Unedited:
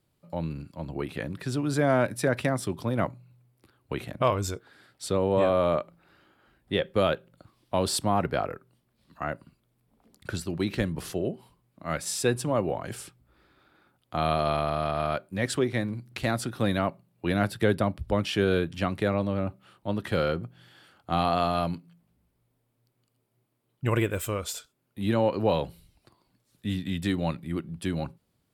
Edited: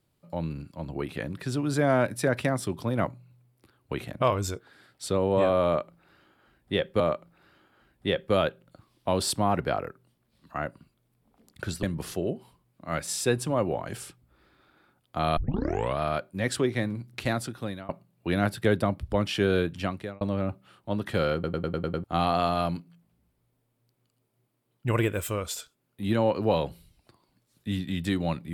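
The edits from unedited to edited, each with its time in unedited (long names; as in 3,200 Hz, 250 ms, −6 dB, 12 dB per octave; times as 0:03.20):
0:05.66–0:07.00: repeat, 2 plays
0:10.49–0:10.81: remove
0:14.35: tape start 0.62 s
0:16.25–0:16.87: fade out, to −22.5 dB
0:18.75–0:19.19: fade out
0:20.32: stutter in place 0.10 s, 7 plays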